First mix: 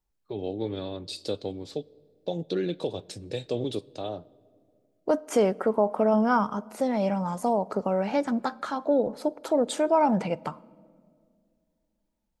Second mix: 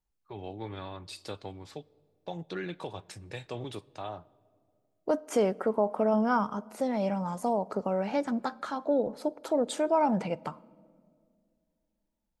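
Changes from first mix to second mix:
first voice: add octave-band graphic EQ 125/250/500/1,000/2,000/4,000/8,000 Hz −3/−8/−11/+7/+5/−9/−3 dB
second voice −3.5 dB

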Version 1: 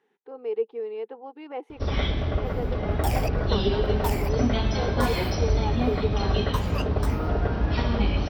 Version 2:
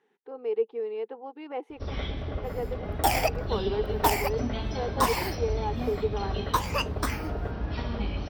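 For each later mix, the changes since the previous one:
first sound −7.5 dB
second sound +7.0 dB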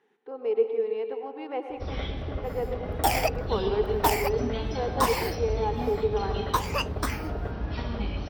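reverb: on, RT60 1.4 s

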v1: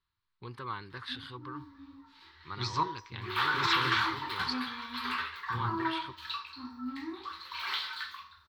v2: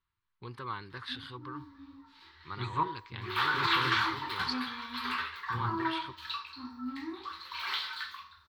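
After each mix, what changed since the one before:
second voice: add Butterworth band-reject 5,300 Hz, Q 1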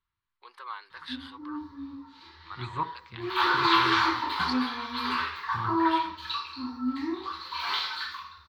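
first voice: add high-pass filter 590 Hz 24 dB per octave
background: send +10.5 dB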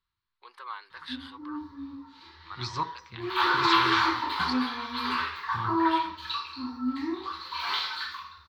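second voice: remove Butterworth band-reject 5,300 Hz, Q 1

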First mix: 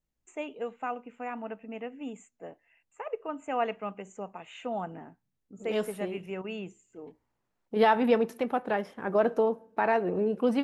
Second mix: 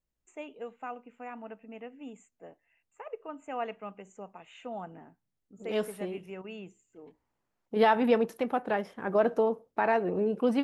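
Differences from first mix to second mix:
first voice −5.5 dB
reverb: off

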